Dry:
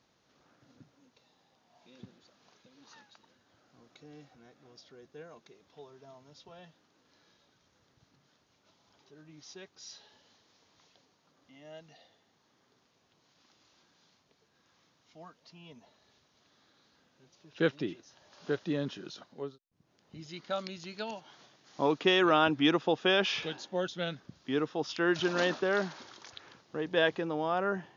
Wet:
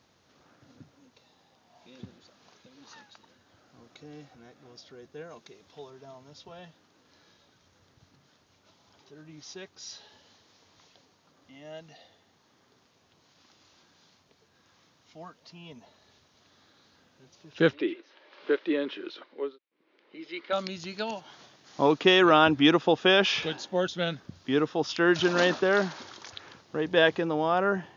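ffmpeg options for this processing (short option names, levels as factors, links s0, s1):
-filter_complex "[0:a]asettb=1/sr,asplit=3[s0][s1][s2];[s0]atrim=end=5.304[s3];[s1]atrim=start=5.3:end=5.9,asetpts=PTS-STARTPTS,afade=t=in:d=0.004:c=qsin,afade=t=out:st=0.596:d=0.004:c=qsin,equalizer=f=5400:w=0.57:g=3.5[s4];[s2]atrim=start=5.896[s5];[s3][s4]acrossfade=d=0.004:c1=hsin:c2=qsin[s6];[s6][s5]acrossfade=d=0.004:c1=qsin:c2=hsin,asettb=1/sr,asplit=3[s7][s8][s9];[s7]atrim=end=17.734[s10];[s8]atrim=start=17.73:end=20.53,asetpts=PTS-STARTPTS,afade=t=in:d=0.004:c=qsin,afade=t=out:st=2.796:d=0.004:c=qsin,highpass=f=310:w=0.5412,highpass=f=310:w=1.3066,equalizer=f=330:t=q:w=4:g=5,equalizer=f=500:t=q:w=4:g=3,equalizer=f=720:t=q:w=4:g=-8,equalizer=f=2200:t=q:w=4:g=7,lowpass=f=3800:w=0.5412,lowpass=f=3800:w=1.3066[s11];[s9]atrim=start=20.526[s12];[s10][s11]acrossfade=d=0.004:c1=hsin:c2=qsin[s13];[s13][s12]acrossfade=d=0.004:c1=qsin:c2=hsin,equalizer=f=90:w=6.9:g=8,volume=1.88"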